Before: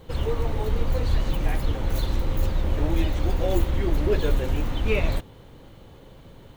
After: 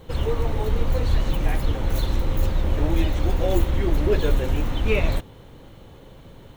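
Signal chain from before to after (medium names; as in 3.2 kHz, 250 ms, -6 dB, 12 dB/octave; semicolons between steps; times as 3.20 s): band-stop 4.7 kHz, Q 20; trim +2 dB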